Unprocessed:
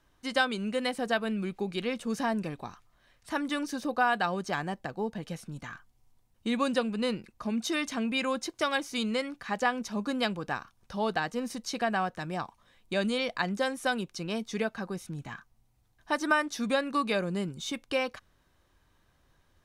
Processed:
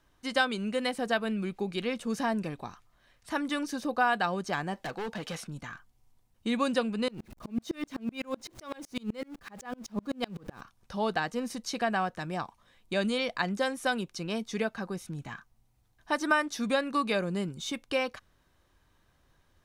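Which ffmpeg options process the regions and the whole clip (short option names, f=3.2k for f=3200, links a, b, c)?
-filter_complex "[0:a]asettb=1/sr,asplit=3[a][b][c];[a]atrim=end=4.744[d];[b]atrim=start=4.74:end=5.47,asetpts=PTS-STARTPTS,afade=t=in:d=0.004:c=qsin,afade=t=out:st=0.726:d=0.004:c=qsin,asplit=2[e][f];[f]highpass=f=720:p=1,volume=16dB,asoftclip=type=tanh:threshold=-20dB[g];[e][g]amix=inputs=2:normalize=0,lowpass=f=5k:p=1,volume=-6dB,asoftclip=type=hard:threshold=-32.5dB[h];[c]atrim=start=5.466[i];[d][h]acrossfade=d=0.004:c1=hsin:c2=qsin[j];[j][i]acrossfade=d=0.004:c1=qsin:c2=hsin,asettb=1/sr,asplit=3[k][l][m];[k]atrim=end=7.084[n];[l]atrim=start=7.08:end=10.61,asetpts=PTS-STARTPTS,afade=t=in:d=0.004:c=qsin,afade=t=out:st=3.526:d=0.004:c=qsin,aeval=exprs='val(0)+0.5*0.0119*sgn(val(0))':c=same,tiltshelf=f=700:g=4,aeval=exprs='val(0)*pow(10,-33*if(lt(mod(-7.9*n/s,1),2*abs(-7.9)/1000),1-mod(-7.9*n/s,1)/(2*abs(-7.9)/1000),(mod(-7.9*n/s,1)-2*abs(-7.9)/1000)/(1-2*abs(-7.9)/1000))/20)':c=same[o];[m]atrim=start=10.606[p];[n][o]acrossfade=d=0.004:c1=hsin:c2=qsin[q];[q][p]acrossfade=d=0.004:c1=qsin:c2=hsin"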